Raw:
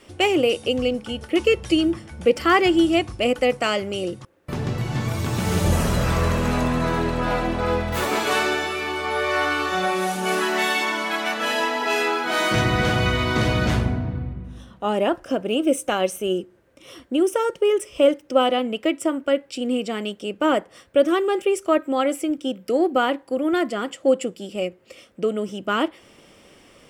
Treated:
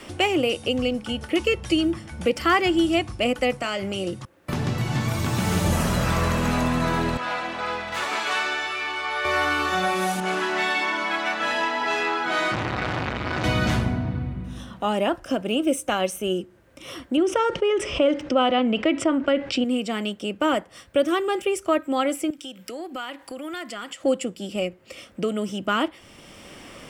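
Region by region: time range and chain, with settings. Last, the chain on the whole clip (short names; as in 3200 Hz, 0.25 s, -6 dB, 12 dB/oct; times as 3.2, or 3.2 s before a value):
3.58–4.07 compressor 3:1, threshold -24 dBFS + doubler 26 ms -12.5 dB
7.17–9.25 HPF 1300 Hz 6 dB/oct + air absorption 61 m
10.2–13.44 air absorption 61 m + notch comb 230 Hz + core saturation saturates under 1200 Hz
17.17–19.64 air absorption 140 m + fast leveller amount 50%
22.3–24.04 tilt shelf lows -7 dB, about 1100 Hz + compressor 3:1, threshold -38 dBFS
whole clip: bell 440 Hz -5 dB 0.7 oct; three-band squash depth 40%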